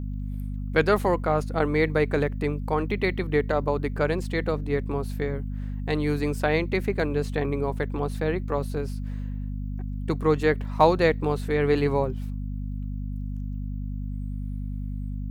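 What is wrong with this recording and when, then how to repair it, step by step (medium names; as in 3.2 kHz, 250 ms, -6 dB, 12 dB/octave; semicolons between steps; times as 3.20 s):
hum 50 Hz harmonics 5 -31 dBFS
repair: de-hum 50 Hz, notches 5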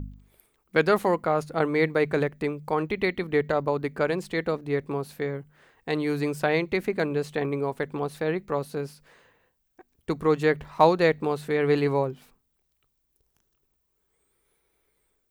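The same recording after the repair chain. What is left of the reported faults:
nothing left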